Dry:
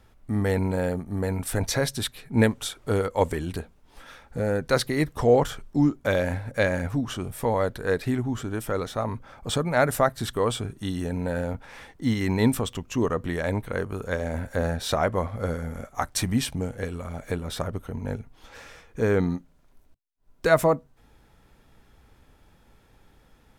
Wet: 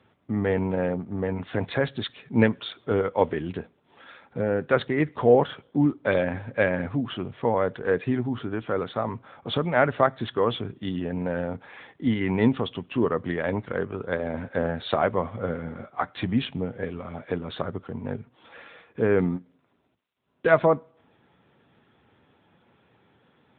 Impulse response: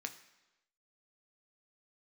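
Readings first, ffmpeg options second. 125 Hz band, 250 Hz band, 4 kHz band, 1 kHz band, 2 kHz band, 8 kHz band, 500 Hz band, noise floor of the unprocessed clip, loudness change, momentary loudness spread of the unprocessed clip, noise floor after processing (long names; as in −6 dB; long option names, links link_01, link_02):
−2.5 dB, +0.5 dB, −3.0 dB, +0.5 dB, +0.5 dB, below −40 dB, +1.0 dB, −59 dBFS, 0.0 dB, 11 LU, −66 dBFS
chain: -filter_complex "[0:a]highpass=100,asplit=2[link_01][link_02];[1:a]atrim=start_sample=2205,asetrate=66150,aresample=44100[link_03];[link_02][link_03]afir=irnorm=-1:irlink=0,volume=-6.5dB[link_04];[link_01][link_04]amix=inputs=2:normalize=0" -ar 8000 -c:a libopencore_amrnb -b:a 10200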